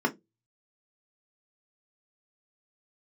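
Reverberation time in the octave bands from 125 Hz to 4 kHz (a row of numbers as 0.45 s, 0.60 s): 0.35 s, 0.25 s, 0.25 s, 0.15 s, 0.15 s, 0.15 s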